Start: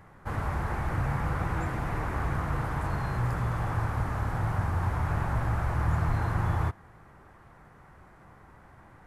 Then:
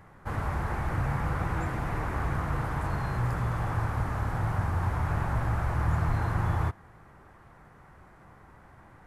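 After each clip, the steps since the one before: nothing audible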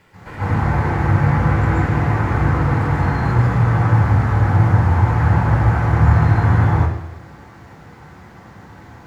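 added noise pink -62 dBFS; reverb RT60 0.85 s, pre-delay 0.131 s, DRR -7.5 dB; gain -5.5 dB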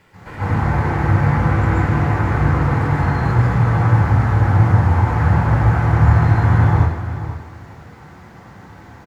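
feedback echo 0.487 s, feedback 17%, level -12 dB

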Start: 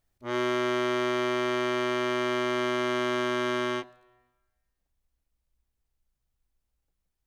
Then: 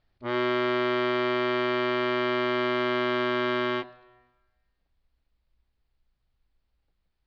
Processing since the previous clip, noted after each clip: elliptic low-pass 4600 Hz, stop band 70 dB; in parallel at 0 dB: limiter -27.5 dBFS, peak gain reduction 11.5 dB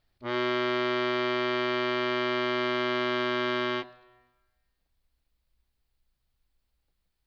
high shelf 4700 Hz +11 dB; gain -2.5 dB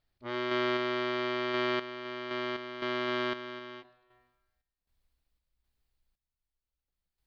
random-step tremolo 3.9 Hz, depth 80%; gain -1.5 dB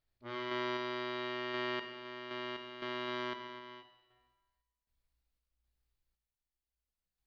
resonator 58 Hz, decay 1.1 s, harmonics all, mix 80%; gain +4.5 dB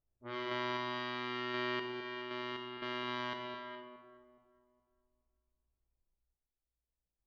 echo with dull and thin repeats by turns 0.209 s, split 940 Hz, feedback 56%, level -4.5 dB; low-pass opened by the level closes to 740 Hz, open at -36 dBFS

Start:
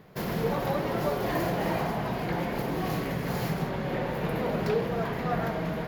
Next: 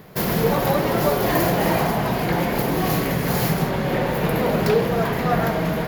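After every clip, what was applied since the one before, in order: high shelf 7300 Hz +10 dB; gain +8.5 dB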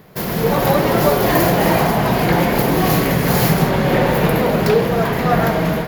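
AGC; gain -1 dB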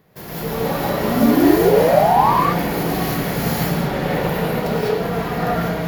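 painted sound rise, 1.04–2.33, 210–1200 Hz -9 dBFS; non-linear reverb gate 0.23 s rising, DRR -6.5 dB; gain -12.5 dB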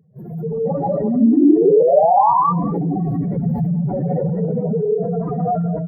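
spectral contrast raised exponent 3.4; echo 0.204 s -16.5 dB; gain +1.5 dB

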